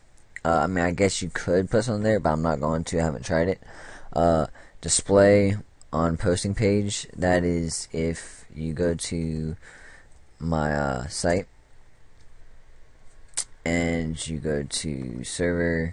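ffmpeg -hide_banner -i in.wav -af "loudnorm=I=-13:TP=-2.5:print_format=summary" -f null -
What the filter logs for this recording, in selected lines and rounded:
Input Integrated:    -25.3 LUFS
Input True Peak:      -6.5 dBTP
Input LRA:             7.2 LU
Input Threshold:     -36.0 LUFS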